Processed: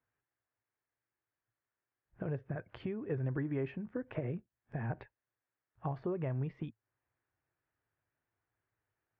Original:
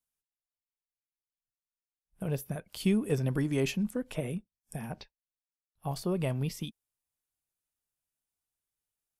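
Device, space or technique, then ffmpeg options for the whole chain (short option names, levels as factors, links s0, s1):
bass amplifier: -af "acompressor=threshold=0.00447:ratio=4,highpass=64,equalizer=f=110:t=q:w=4:g=9,equalizer=f=200:t=q:w=4:g=-8,equalizer=f=350:t=q:w=4:g=4,equalizer=f=1700:t=q:w=4:g=5,lowpass=f=2000:w=0.5412,lowpass=f=2000:w=1.3066,volume=3.16"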